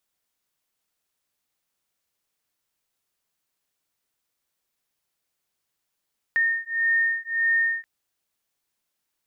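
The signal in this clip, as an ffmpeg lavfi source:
-f lavfi -i "aevalsrc='0.0668*(sin(2*PI*1830*t)+sin(2*PI*1831.7*t))':d=1.48:s=44100"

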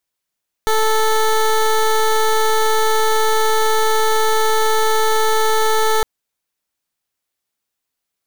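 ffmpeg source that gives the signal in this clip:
-f lavfi -i "aevalsrc='0.188*(2*lt(mod(438*t,1),0.17)-1)':d=5.36:s=44100"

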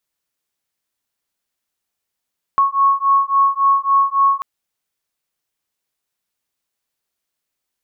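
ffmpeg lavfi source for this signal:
-f lavfi -i "aevalsrc='0.178*(sin(2*PI*1100*t)+sin(2*PI*1103.6*t))':d=1.84:s=44100"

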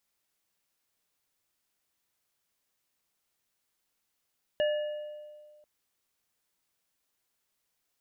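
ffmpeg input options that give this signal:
-f lavfi -i "aevalsrc='0.0708*pow(10,-3*t/1.85)*sin(2*PI*600*t)+0.0178*pow(10,-3*t/0.97)*sin(2*PI*1730*t)+0.0168*pow(10,-3*t/1.18)*sin(2*PI*2870*t)':d=1.04:s=44100"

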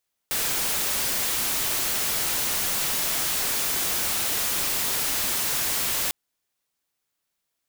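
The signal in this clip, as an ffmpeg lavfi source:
-f lavfi -i "anoisesrc=c=white:a=0.0919:d=5.8:r=44100:seed=1"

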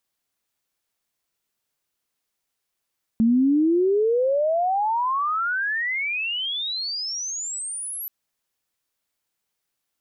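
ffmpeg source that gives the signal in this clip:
-f lavfi -i "aevalsrc='pow(10,(-14.5-14.5*t/4.88)/20)*sin(2*PI*220*4.88/log(12000/220)*(exp(log(12000/220)*t/4.88)-1))':d=4.88:s=44100"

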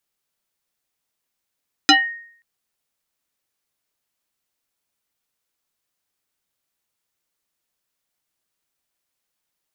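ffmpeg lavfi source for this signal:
-f lavfi -i "aevalsrc='0.501*pow(10,-3*t/0.59)*sin(2*PI*1860*t+4.2*pow(10,-3*t/0.26)*sin(2*PI*0.58*1860*t))':d=0.53:s=44100"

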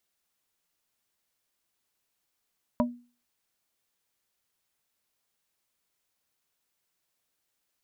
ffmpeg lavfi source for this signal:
-f lavfi -i "aevalsrc='0.1*pow(10,-3*t/0.37)*sin(2*PI*242*t)+0.0891*pow(10,-3*t/0.123)*sin(2*PI*605*t)+0.0794*pow(10,-3*t/0.07)*sin(2*PI*968*t)':d=0.45:s=44100"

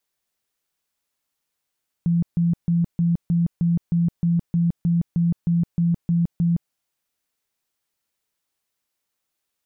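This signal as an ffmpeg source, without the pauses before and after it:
-f lavfi -i "aevalsrc='0.158*sin(2*PI*170*mod(t,0.31))*lt(mod(t,0.31),28/170)':d=4.65:s=44100"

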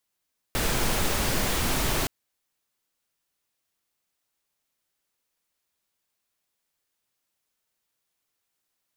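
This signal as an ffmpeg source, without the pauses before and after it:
-f lavfi -i "anoisesrc=c=pink:a=0.288:d=1.52:r=44100:seed=1"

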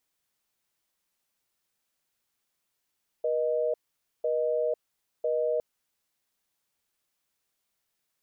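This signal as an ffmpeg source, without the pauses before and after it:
-f lavfi -i "aevalsrc='0.0447*(sin(2*PI*480*t)+sin(2*PI*620*t))*clip(min(mod(t,1),0.5-mod(t,1))/0.005,0,1)':d=2.36:s=44100"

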